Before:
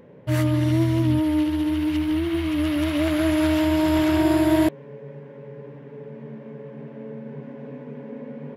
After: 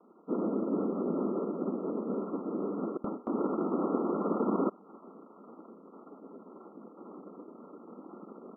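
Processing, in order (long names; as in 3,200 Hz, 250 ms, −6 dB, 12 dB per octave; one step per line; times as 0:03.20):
adaptive Wiener filter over 41 samples
cochlear-implant simulation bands 3
linear-phase brick-wall band-pass 180–1,400 Hz
0:02.97–0:03.58: noise gate with hold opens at −14 dBFS
level −8.5 dB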